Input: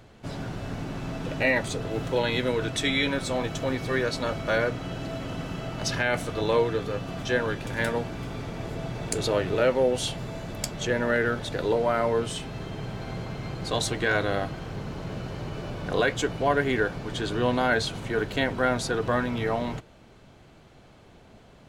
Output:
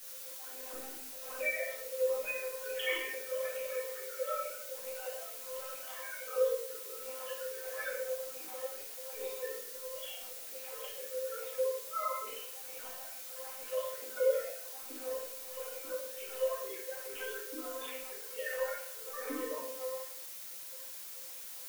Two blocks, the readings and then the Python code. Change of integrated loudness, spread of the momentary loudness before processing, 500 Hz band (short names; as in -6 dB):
-10.5 dB, 11 LU, -9.5 dB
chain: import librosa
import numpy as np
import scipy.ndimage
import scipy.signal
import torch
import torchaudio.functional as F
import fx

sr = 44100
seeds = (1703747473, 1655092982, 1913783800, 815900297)

y = fx.sine_speech(x, sr)
y = fx.low_shelf(y, sr, hz=220.0, db=4.5)
y = fx.notch(y, sr, hz=2000.0, q=15.0)
y = y + 0.77 * np.pad(y, (int(4.0 * sr / 1000.0), 0))[:len(y)]
y = fx.over_compress(y, sr, threshold_db=-27.0, ratio=-0.5)
y = fx.comb_fb(y, sr, f0_hz=260.0, decay_s=1.0, harmonics='all', damping=0.0, mix_pct=90)
y = y * (1.0 - 0.73 / 2.0 + 0.73 / 2.0 * np.cos(2.0 * np.pi * 1.4 * (np.arange(len(y)) / sr)))
y = fx.phaser_stages(y, sr, stages=12, low_hz=230.0, high_hz=1300.0, hz=2.3, feedback_pct=50)
y = fx.dmg_noise_colour(y, sr, seeds[0], colour='blue', level_db=-53.0)
y = fx.room_shoebox(y, sr, seeds[1], volume_m3=150.0, walls='mixed', distance_m=2.3)